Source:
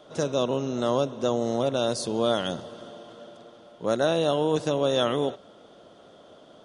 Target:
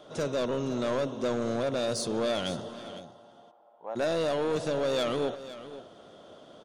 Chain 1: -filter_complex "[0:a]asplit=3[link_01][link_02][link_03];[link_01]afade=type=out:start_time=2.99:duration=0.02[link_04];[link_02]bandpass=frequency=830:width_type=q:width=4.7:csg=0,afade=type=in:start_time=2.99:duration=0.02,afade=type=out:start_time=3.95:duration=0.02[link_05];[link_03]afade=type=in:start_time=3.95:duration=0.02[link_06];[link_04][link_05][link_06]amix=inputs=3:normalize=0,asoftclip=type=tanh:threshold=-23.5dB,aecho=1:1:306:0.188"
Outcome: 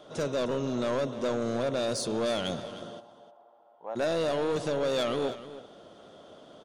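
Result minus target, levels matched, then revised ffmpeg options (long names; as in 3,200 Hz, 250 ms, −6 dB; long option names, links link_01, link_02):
echo 203 ms early
-filter_complex "[0:a]asplit=3[link_01][link_02][link_03];[link_01]afade=type=out:start_time=2.99:duration=0.02[link_04];[link_02]bandpass=frequency=830:width_type=q:width=4.7:csg=0,afade=type=in:start_time=2.99:duration=0.02,afade=type=out:start_time=3.95:duration=0.02[link_05];[link_03]afade=type=in:start_time=3.95:duration=0.02[link_06];[link_04][link_05][link_06]amix=inputs=3:normalize=0,asoftclip=type=tanh:threshold=-23.5dB,aecho=1:1:509:0.188"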